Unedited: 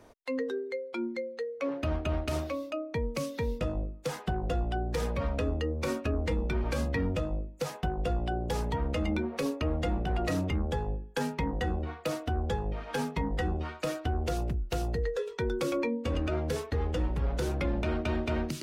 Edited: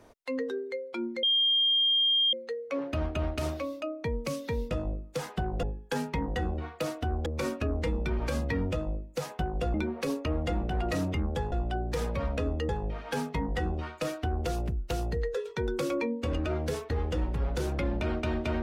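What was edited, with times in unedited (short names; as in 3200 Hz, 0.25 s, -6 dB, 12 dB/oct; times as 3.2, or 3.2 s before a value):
1.23 add tone 3210 Hz -21.5 dBFS 1.10 s
4.53–5.7 swap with 10.88–12.51
8.18–9.1 cut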